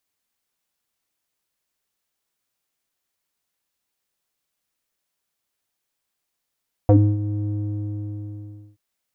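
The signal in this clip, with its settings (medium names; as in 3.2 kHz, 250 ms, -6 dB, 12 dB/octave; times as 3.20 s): synth note square G#2 12 dB/octave, low-pass 250 Hz, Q 3.8, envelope 1.5 oct, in 0.08 s, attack 1 ms, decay 0.28 s, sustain -13 dB, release 1.28 s, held 0.60 s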